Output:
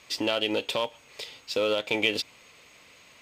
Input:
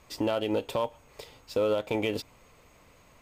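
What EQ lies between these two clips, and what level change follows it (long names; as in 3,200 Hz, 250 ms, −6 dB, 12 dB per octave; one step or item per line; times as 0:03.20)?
meter weighting curve D
0.0 dB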